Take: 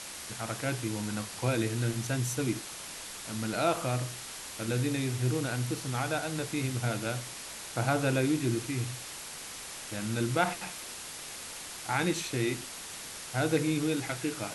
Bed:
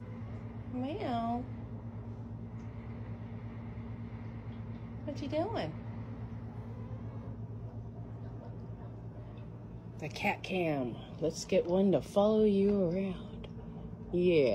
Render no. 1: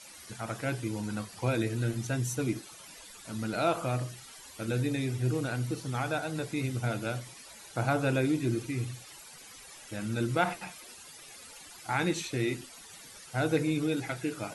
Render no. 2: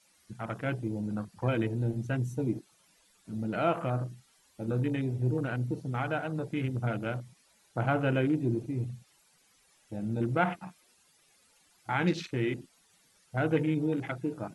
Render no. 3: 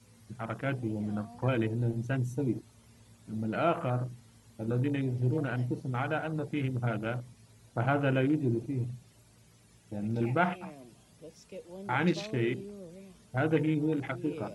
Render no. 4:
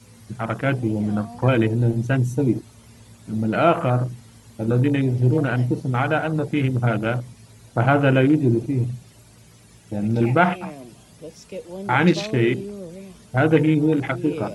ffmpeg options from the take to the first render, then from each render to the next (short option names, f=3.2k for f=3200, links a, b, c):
-af "afftdn=nr=14:nf=-43"
-af "afwtdn=0.0112,equalizer=f=180:w=4.2:g=5.5"
-filter_complex "[1:a]volume=-16dB[a];[0:a][a]amix=inputs=2:normalize=0"
-af "volume=11dB,alimiter=limit=-3dB:level=0:latency=1"